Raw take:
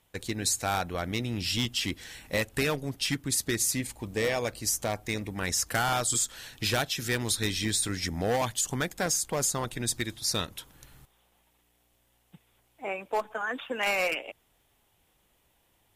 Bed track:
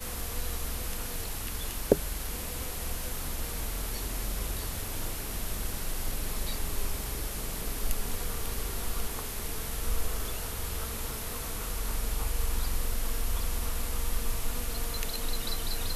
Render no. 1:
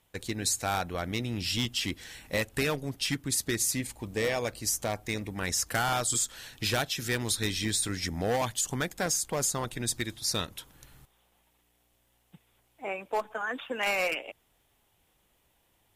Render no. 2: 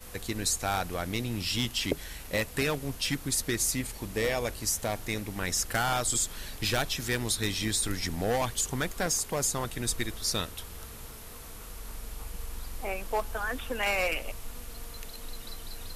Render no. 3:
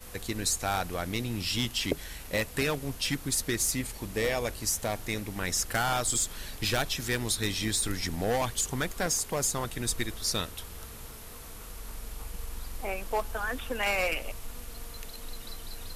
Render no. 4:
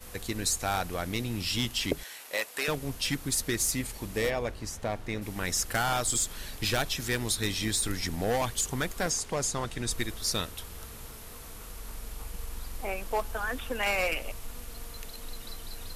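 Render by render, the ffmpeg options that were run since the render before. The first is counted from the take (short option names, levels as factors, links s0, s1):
-af "volume=0.891"
-filter_complex "[1:a]volume=0.355[s0];[0:a][s0]amix=inputs=2:normalize=0"
-af "aeval=exprs='0.237*(cos(1*acos(clip(val(0)/0.237,-1,1)))-cos(1*PI/2))+0.00299*(cos(8*acos(clip(val(0)/0.237,-1,1)))-cos(8*PI/2))':c=same"
-filter_complex "[0:a]asettb=1/sr,asplit=3[s0][s1][s2];[s0]atrim=end=2.034[s3];[s1]atrim=start=2.03:end=2.68,asetpts=PTS-STARTPTS,afade=t=in:d=0.004:c=qsin,afade=t=out:st=0.646:d=0.004:c=qsin,highpass=560[s4];[s2]atrim=start=2.676[s5];[s3][s4]acrossfade=d=0.004:c1=hsin:c2=qsin[s6];[s6][s5]acrossfade=d=0.004:c1=qsin:c2=hsin,asplit=3[s7][s8][s9];[s7]afade=t=out:st=4.29:d=0.02[s10];[s8]aemphasis=mode=reproduction:type=75kf,afade=t=in:st=4.29:d=0.02,afade=t=out:st=5.21:d=0.02[s11];[s9]afade=t=in:st=5.21:d=0.02[s12];[s10][s11][s12]amix=inputs=3:normalize=0,asettb=1/sr,asplit=3[s13][s14][s15];[s13]atrim=end=9.104[s16];[s14]atrim=start=9.1:end=9.91,asetpts=PTS-STARTPTS,afade=t=in:d=0.004:c=qsin,afade=t=out:st=0.806:d=0.004:c=qsin,lowpass=8200[s17];[s15]atrim=start=9.906[s18];[s16][s17]acrossfade=d=0.004:c1=hsin:c2=qsin[s19];[s19][s18]acrossfade=d=0.004:c1=qsin:c2=hsin"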